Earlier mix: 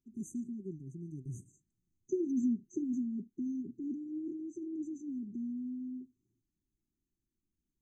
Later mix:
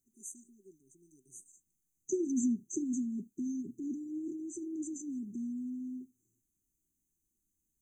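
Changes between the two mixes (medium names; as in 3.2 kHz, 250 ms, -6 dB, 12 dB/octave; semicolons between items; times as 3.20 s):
first voice: add band-pass 770–3800 Hz; master: remove distance through air 230 m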